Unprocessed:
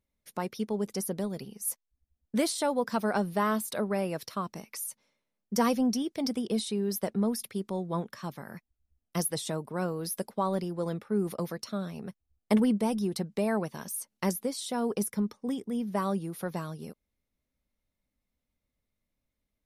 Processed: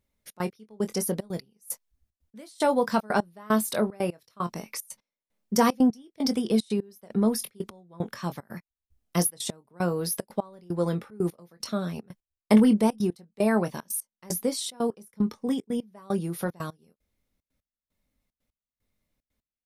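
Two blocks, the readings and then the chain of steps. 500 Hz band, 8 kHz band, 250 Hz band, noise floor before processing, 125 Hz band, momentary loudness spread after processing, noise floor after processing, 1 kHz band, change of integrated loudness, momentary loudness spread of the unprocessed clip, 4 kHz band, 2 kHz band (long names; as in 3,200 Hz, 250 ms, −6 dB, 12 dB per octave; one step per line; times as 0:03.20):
+3.0 dB, +3.0 dB, +4.0 dB, −84 dBFS, +3.0 dB, 14 LU, below −85 dBFS, +2.5 dB, +3.5 dB, 10 LU, +2.5 dB, +3.0 dB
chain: double-tracking delay 23 ms −10 dB
gate pattern "xxx.x...x" 150 BPM −24 dB
level +5 dB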